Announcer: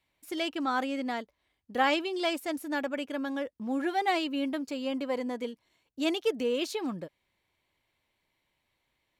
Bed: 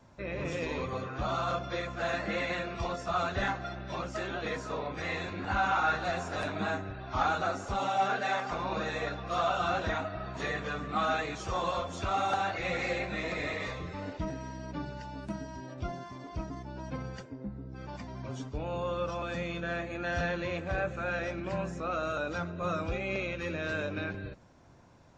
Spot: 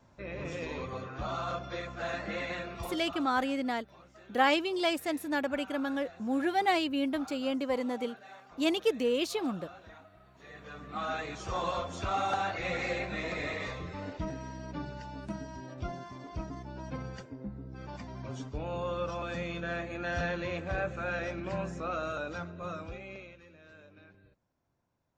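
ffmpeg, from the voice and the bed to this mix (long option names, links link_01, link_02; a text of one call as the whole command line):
ffmpeg -i stem1.wav -i stem2.wav -filter_complex "[0:a]adelay=2600,volume=0.5dB[link_01];[1:a]volume=15.5dB,afade=type=out:start_time=2.71:duration=0.59:silence=0.149624,afade=type=in:start_time=10.43:duration=1.18:silence=0.112202,afade=type=out:start_time=21.83:duration=1.64:silence=0.0944061[link_02];[link_01][link_02]amix=inputs=2:normalize=0" out.wav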